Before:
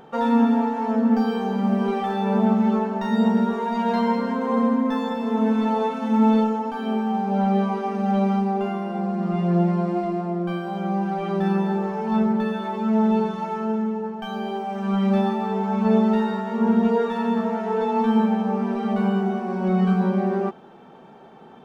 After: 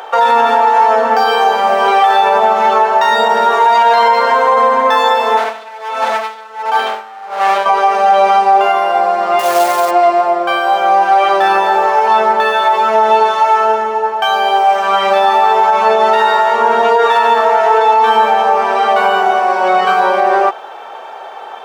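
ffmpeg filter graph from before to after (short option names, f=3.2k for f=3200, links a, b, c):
-filter_complex "[0:a]asettb=1/sr,asplit=3[a][b][c];[a]atrim=end=5.374[d];[b]atrim=start=5.37:end=7.66,asetpts=PTS-STARTPTS,afade=t=in:d=0.004:c=qsin,afade=t=out:st=2.286:d=0.004:c=qsin,asoftclip=type=hard:threshold=-23dB,aeval=exprs='val(0)*pow(10,-22*(0.5-0.5*cos(2*PI*1.4*n/s))/20)':c=same[e];[c]atrim=start=7.656[f];[d][e]acrossfade=d=0.004:c1=hsin:c2=qsin[g];[g][f]acrossfade=d=0.004:c1=qsin:c2=hsin,asettb=1/sr,asplit=3[h][i][j];[h]atrim=end=9.394[k];[i]atrim=start=9.39:end=9.91,asetpts=PTS-STARTPTS,afade=t=in:d=0.004:c=qsin,afade=t=out:st=0.516:d=0.004:c=qsin,lowshelf=f=220:g=-7.5,acrusher=bits=5:mode=log:mix=0:aa=0.000001[l];[j]atrim=start=9.906[m];[k][l]acrossfade=d=0.004:c1=hsin:c2=qsin[n];[n][m]acrossfade=d=0.004:c1=qsin:c2=hsin,highpass=f=580:w=0.5412,highpass=f=580:w=1.3066,alimiter=level_in=22dB:limit=-1dB:release=50:level=0:latency=1,volume=-1dB"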